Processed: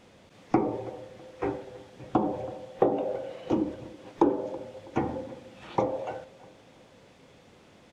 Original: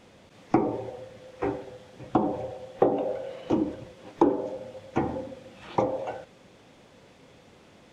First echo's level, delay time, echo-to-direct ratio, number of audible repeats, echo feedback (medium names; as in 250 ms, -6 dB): -21.0 dB, 326 ms, -20.5 dB, 2, 38%